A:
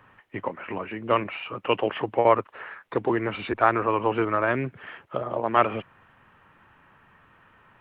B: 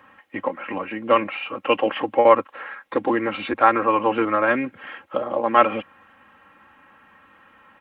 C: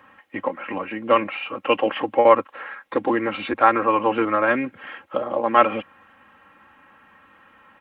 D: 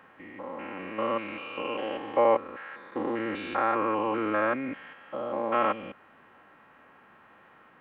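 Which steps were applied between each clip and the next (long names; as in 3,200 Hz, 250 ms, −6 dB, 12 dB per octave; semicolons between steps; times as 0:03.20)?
high-pass filter 160 Hz 6 dB per octave; comb filter 3.7 ms, depth 70%; level +3 dB
no processing that can be heard
spectrum averaged block by block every 200 ms; noise in a band 140–1,700 Hz −55 dBFS; level −5 dB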